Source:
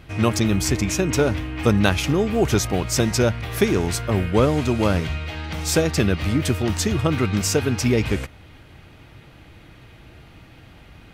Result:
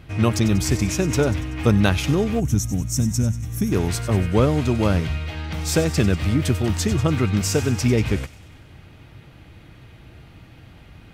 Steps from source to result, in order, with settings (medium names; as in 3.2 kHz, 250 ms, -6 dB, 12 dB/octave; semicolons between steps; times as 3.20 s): peaking EQ 110 Hz +4.5 dB 2.3 oct; on a send: feedback echo behind a high-pass 95 ms, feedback 60%, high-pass 3.5 kHz, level -11.5 dB; on the sum: time-frequency box 2.40–3.72 s, 310–5300 Hz -15 dB; trim -2 dB